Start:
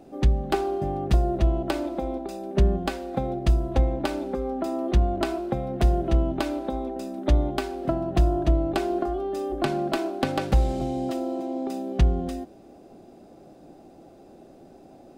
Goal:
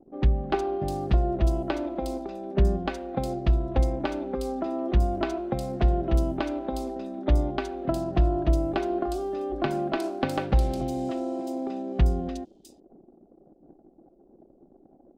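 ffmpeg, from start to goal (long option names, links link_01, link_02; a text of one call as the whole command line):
ffmpeg -i in.wav -filter_complex "[0:a]anlmdn=0.1,acrossover=split=4300[link_01][link_02];[link_02]adelay=360[link_03];[link_01][link_03]amix=inputs=2:normalize=0,volume=-1.5dB" out.wav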